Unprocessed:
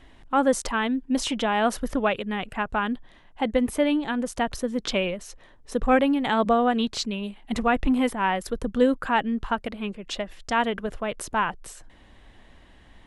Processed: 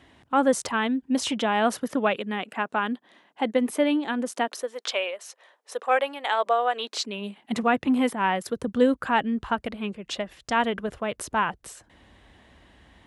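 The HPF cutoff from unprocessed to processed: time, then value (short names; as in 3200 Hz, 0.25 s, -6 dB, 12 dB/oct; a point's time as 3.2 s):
HPF 24 dB/oct
1.21 s 73 Hz
2.43 s 210 Hz
4.35 s 210 Hz
4.75 s 510 Hz
6.72 s 510 Hz
7.53 s 120 Hz
8.37 s 120 Hz
9 s 50 Hz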